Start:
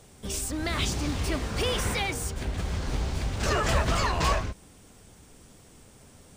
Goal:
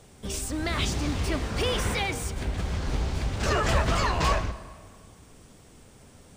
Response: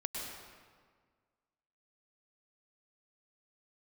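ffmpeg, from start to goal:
-filter_complex "[0:a]highshelf=f=6500:g=-4.5,asplit=2[s0][s1];[1:a]atrim=start_sample=2205,asetrate=38808,aresample=44100[s2];[s1][s2]afir=irnorm=-1:irlink=0,volume=0.15[s3];[s0][s3]amix=inputs=2:normalize=0"

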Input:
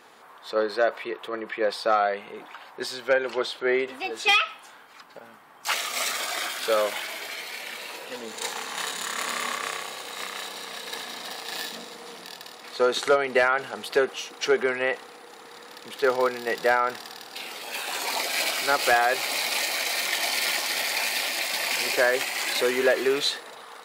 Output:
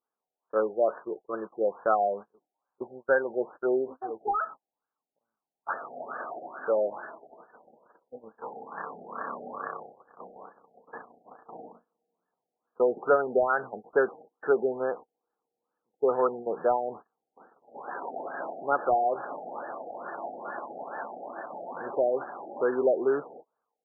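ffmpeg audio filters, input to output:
-af "agate=range=0.0158:threshold=0.02:ratio=16:detection=peak,afftfilt=real='re*lt(b*sr/1024,810*pow(1800/810,0.5+0.5*sin(2*PI*2.3*pts/sr)))':imag='im*lt(b*sr/1024,810*pow(1800/810,0.5+0.5*sin(2*PI*2.3*pts/sr)))':win_size=1024:overlap=0.75,volume=0.841"

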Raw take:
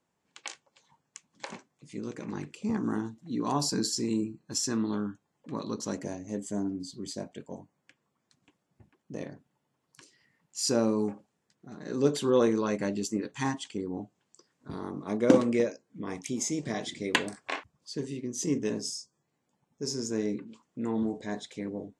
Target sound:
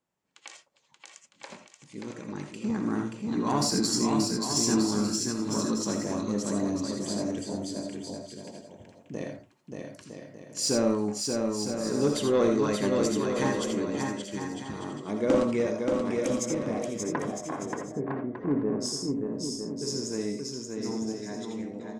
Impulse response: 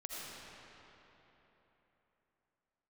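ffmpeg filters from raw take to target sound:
-filter_complex "[0:a]asplit=3[s0][s1][s2];[s0]afade=t=out:st=16.44:d=0.02[s3];[s1]lowpass=f=1300:w=0.5412,lowpass=f=1300:w=1.3066,afade=t=in:st=16.44:d=0.02,afade=t=out:st=18.8:d=0.02[s4];[s2]afade=t=in:st=18.8:d=0.02[s5];[s3][s4][s5]amix=inputs=3:normalize=0,dynaudnorm=f=380:g=13:m=2.82,asoftclip=type=tanh:threshold=0.299,aecho=1:1:580|957|1202|1361|1465:0.631|0.398|0.251|0.158|0.1[s6];[1:a]atrim=start_sample=2205,afade=t=out:st=0.14:d=0.01,atrim=end_sample=6615[s7];[s6][s7]afir=irnorm=-1:irlink=0"

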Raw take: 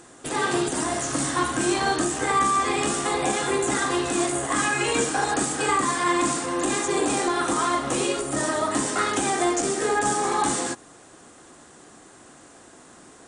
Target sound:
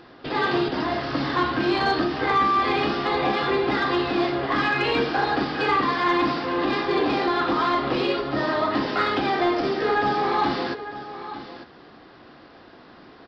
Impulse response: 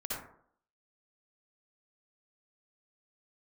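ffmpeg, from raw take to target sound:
-af "aresample=11025,aresample=44100,aecho=1:1:899:0.211,asoftclip=type=tanh:threshold=0.237,volume=1.26"

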